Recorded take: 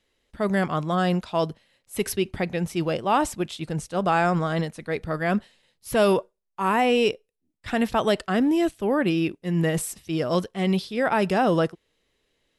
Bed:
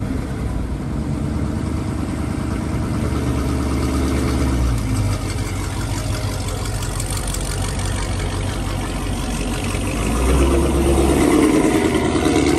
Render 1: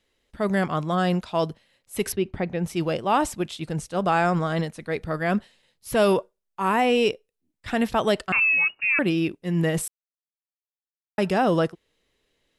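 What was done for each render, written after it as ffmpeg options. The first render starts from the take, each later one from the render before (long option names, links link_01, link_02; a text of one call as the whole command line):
ffmpeg -i in.wav -filter_complex "[0:a]asettb=1/sr,asplit=3[link_01][link_02][link_03];[link_01]atrim=end=2.124[link_04];[link_02]atrim=start=2.12:end=2.64,asetpts=PTS-STARTPTS,afade=type=in:duration=0.004:curve=qsin,afade=type=out:start_time=0.516:duration=0.004:curve=qsin,lowpass=frequency=1700:poles=1[link_05];[link_03]atrim=start=2.636[link_06];[link_04][link_05]acrossfade=duration=0.004:curve1=hsin:curve2=qsin[link_07];[link_07][link_06]acrossfade=duration=0.004:curve1=qsin:curve2=hsin,asettb=1/sr,asplit=3[link_08][link_09][link_10];[link_08]atrim=end=8.324[link_11];[link_09]atrim=start=8.32:end=8.99,asetpts=PTS-STARTPTS,afade=type=in:duration=0.004:curve=qsin,afade=type=out:start_time=0.666:duration=0.004:curve=qsin,lowpass=frequency=2500:width_type=q:width=0.5098,lowpass=frequency=2500:width_type=q:width=0.6013,lowpass=frequency=2500:width_type=q:width=0.9,lowpass=frequency=2500:width_type=q:width=2.563,afreqshift=-2900[link_12];[link_10]atrim=start=8.986[link_13];[link_11][link_12]acrossfade=duration=0.004:curve1=hsin:curve2=qsin[link_14];[link_14][link_13]acrossfade=duration=0.004:curve1=qsin:curve2=hsin,asplit=3[link_15][link_16][link_17];[link_15]atrim=end=9.88,asetpts=PTS-STARTPTS,afade=type=out:start_time=9.876:duration=0.004:curve=hsin[link_18];[link_16]atrim=start=9.88:end=11.18,asetpts=PTS-STARTPTS,volume=0[link_19];[link_17]atrim=start=11.18,asetpts=PTS-STARTPTS,afade=type=in:duration=0.004:curve=hsin[link_20];[link_18][link_19][link_20]concat=n=3:v=0:a=1" out.wav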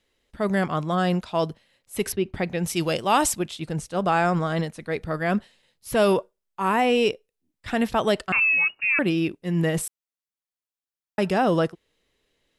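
ffmpeg -i in.wav -filter_complex "[0:a]asettb=1/sr,asplit=3[link_01][link_02][link_03];[link_01]atrim=end=2.344[link_04];[link_02]atrim=start=2.34:end=3.39,asetpts=PTS-STARTPTS,afade=type=in:duration=0.004:curve=qsin,afade=type=out:start_time=1.046:duration=0.004:curve=qsin,highshelf=frequency=2800:gain=11.5[link_05];[link_03]atrim=start=3.386[link_06];[link_04][link_05]acrossfade=duration=0.004:curve1=hsin:curve2=qsin[link_07];[link_07][link_06]acrossfade=duration=0.004:curve1=qsin:curve2=hsin" out.wav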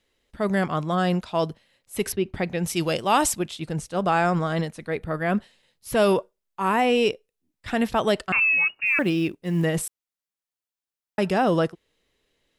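ffmpeg -i in.wav -filter_complex "[0:a]asettb=1/sr,asplit=3[link_01][link_02][link_03];[link_01]atrim=end=4.904[link_04];[link_02]atrim=start=4.9:end=5.37,asetpts=PTS-STARTPTS,afade=type=in:duration=0.004:curve=qsin,afade=type=out:start_time=0.466:duration=0.004:curve=qsin,equalizer=frequency=5500:width=1.6:gain=-10[link_05];[link_03]atrim=start=5.366[link_06];[link_04][link_05]acrossfade=duration=0.004:curve1=hsin:curve2=qsin[link_07];[link_07][link_06]acrossfade=duration=0.004:curve1=qsin:curve2=hsin,asettb=1/sr,asplit=3[link_08][link_09][link_10];[link_08]atrim=end=8.864[link_11];[link_09]atrim=start=8.86:end=9.65,asetpts=PTS-STARTPTS,afade=type=in:duration=0.004:curve=qsin,afade=type=out:start_time=0.786:duration=0.004:curve=qsin,acrusher=bits=9:mode=log:mix=0:aa=0.000001[link_12];[link_10]atrim=start=9.646[link_13];[link_11][link_12]acrossfade=duration=0.004:curve1=hsin:curve2=qsin[link_14];[link_14][link_13]acrossfade=duration=0.004:curve1=qsin:curve2=hsin" out.wav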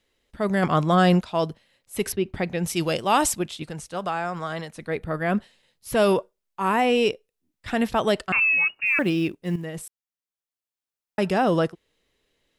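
ffmpeg -i in.wav -filter_complex "[0:a]asplit=3[link_01][link_02][link_03];[link_01]afade=type=out:start_time=0.62:duration=0.02[link_04];[link_02]acontrast=35,afade=type=in:start_time=0.62:duration=0.02,afade=type=out:start_time=1.21:duration=0.02[link_05];[link_03]afade=type=in:start_time=1.21:duration=0.02[link_06];[link_04][link_05][link_06]amix=inputs=3:normalize=0,asettb=1/sr,asplit=3[link_07][link_08][link_09];[link_07]atrim=end=3.624[link_10];[link_08]atrim=start=3.62:end=4.74,asetpts=PTS-STARTPTS,afade=type=in:duration=0.004:curve=qsin,afade=type=out:start_time=1.116:duration=0.004:curve=qsin,acrossover=split=660|1400[link_11][link_12][link_13];[link_11]acompressor=threshold=-34dB:ratio=4[link_14];[link_12]acompressor=threshold=-28dB:ratio=4[link_15];[link_13]acompressor=threshold=-36dB:ratio=4[link_16];[link_14][link_15][link_16]amix=inputs=3:normalize=0[link_17];[link_09]atrim=start=4.736[link_18];[link_10][link_17]acrossfade=duration=0.004:curve1=hsin:curve2=qsin[link_19];[link_19][link_18]acrossfade=duration=0.004:curve1=qsin:curve2=hsin,asplit=2[link_20][link_21];[link_20]atrim=end=9.56,asetpts=PTS-STARTPTS,afade=type=out:start_time=9.556:duration=0.004:curve=hsin:silence=0.251189[link_22];[link_21]atrim=start=9.56,asetpts=PTS-STARTPTS,afade=type=in:duration=1.66:silence=0.251189[link_23];[link_22][link_23]concat=n=2:v=0:a=1" out.wav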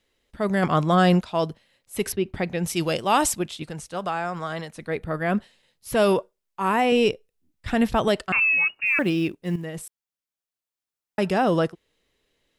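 ffmpeg -i in.wav -filter_complex "[0:a]asettb=1/sr,asplit=3[link_01][link_02][link_03];[link_01]atrim=end=6.924[link_04];[link_02]atrim=start=6.92:end=8.08,asetpts=PTS-STARTPTS,afade=type=in:duration=0.004:curve=qsin,afade=type=out:start_time=1.156:duration=0.004:curve=qsin,lowshelf=frequency=150:gain=10[link_05];[link_03]atrim=start=8.076[link_06];[link_04][link_05]acrossfade=duration=0.004:curve1=hsin:curve2=qsin[link_07];[link_07][link_06]acrossfade=duration=0.004:curve1=qsin:curve2=hsin" out.wav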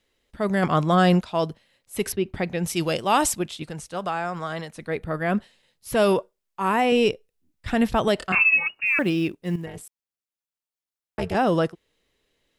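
ffmpeg -i in.wav -filter_complex "[0:a]asettb=1/sr,asplit=3[link_01][link_02][link_03];[link_01]atrim=end=8.164[link_04];[link_02]atrim=start=8.16:end=8.67,asetpts=PTS-STARTPTS,afade=type=in:duration=0.004:curve=qsin,afade=type=out:start_time=0.506:duration=0.004:curve=qsin,asplit=2[link_05][link_06];[link_06]adelay=26,volume=-3dB[link_07];[link_05][link_07]amix=inputs=2:normalize=0,atrim=end_sample=22491[link_08];[link_03]atrim=start=8.666[link_09];[link_04][link_08]acrossfade=duration=0.004:curve1=hsin:curve2=qsin[link_10];[link_10][link_09]acrossfade=duration=0.004:curve1=qsin:curve2=hsin,asettb=1/sr,asplit=3[link_11][link_12][link_13];[link_11]atrim=end=9.664[link_14];[link_12]atrim=start=9.66:end=11.35,asetpts=PTS-STARTPTS,afade=type=in:duration=0.004:curve=qsin,afade=type=out:start_time=1.686:duration=0.004:curve=qsin,tremolo=f=270:d=1[link_15];[link_13]atrim=start=11.346[link_16];[link_14][link_15]acrossfade=duration=0.004:curve1=hsin:curve2=qsin[link_17];[link_17][link_16]acrossfade=duration=0.004:curve1=qsin:curve2=hsin" out.wav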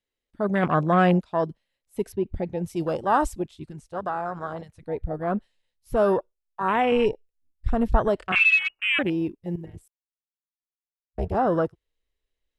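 ffmpeg -i in.wav -af "afwtdn=0.0501,asubboost=boost=7.5:cutoff=58" out.wav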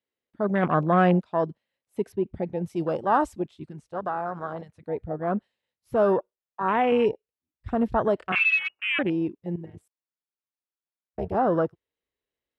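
ffmpeg -i in.wav -af "highpass=120,highshelf=frequency=4000:gain=-11.5" out.wav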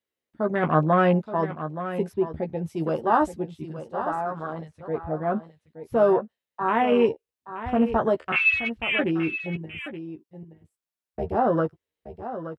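ffmpeg -i in.wav -filter_complex "[0:a]asplit=2[link_01][link_02];[link_02]adelay=13,volume=-6dB[link_03];[link_01][link_03]amix=inputs=2:normalize=0,aecho=1:1:874:0.266" out.wav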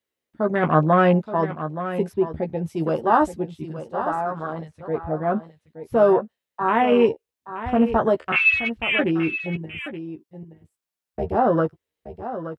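ffmpeg -i in.wav -af "volume=3dB" out.wav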